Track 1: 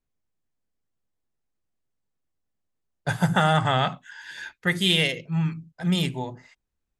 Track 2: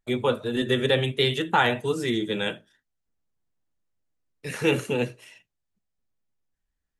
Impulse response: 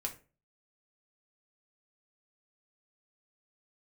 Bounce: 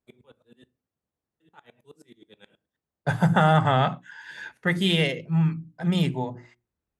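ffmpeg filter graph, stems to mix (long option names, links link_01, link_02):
-filter_complex "[0:a]highshelf=frequency=2200:gain=-11,bandreject=frequency=60:width_type=h:width=6,bandreject=frequency=120:width_type=h:width=6,bandreject=frequency=180:width_type=h:width=6,bandreject=frequency=240:width_type=h:width=6,bandreject=frequency=300:width_type=h:width=6,bandreject=frequency=360:width_type=h:width=6,volume=2.5dB,asplit=3[link_01][link_02][link_03];[link_02]volume=-22dB[link_04];[1:a]highshelf=frequency=9600:gain=6,acompressor=threshold=-25dB:ratio=10,aeval=exprs='val(0)*pow(10,-38*if(lt(mod(-9.4*n/s,1),2*abs(-9.4)/1000),1-mod(-9.4*n/s,1)/(2*abs(-9.4)/1000),(mod(-9.4*n/s,1)-2*abs(-9.4)/1000)/(1-2*abs(-9.4)/1000))/20)':channel_layout=same,volume=-17dB,asplit=3[link_05][link_06][link_07];[link_05]atrim=end=0.68,asetpts=PTS-STARTPTS,afade=type=out:start_time=0.676:duration=0.004:curve=hsin[link_08];[link_06]atrim=start=0.68:end=1.4,asetpts=PTS-STARTPTS,volume=0[link_09];[link_07]atrim=start=1.4,asetpts=PTS-STARTPTS,afade=type=in:duration=0.004:curve=hsin[link_10];[link_08][link_09][link_10]concat=n=3:v=0:a=1,asplit=2[link_11][link_12];[link_12]volume=-10.5dB[link_13];[link_03]apad=whole_len=308593[link_14];[link_11][link_14]sidechaincompress=threshold=-50dB:ratio=8:attack=16:release=819[link_15];[2:a]atrim=start_sample=2205[link_16];[link_04][link_13]amix=inputs=2:normalize=0[link_17];[link_17][link_16]afir=irnorm=-1:irlink=0[link_18];[link_01][link_15][link_18]amix=inputs=3:normalize=0,highpass=66"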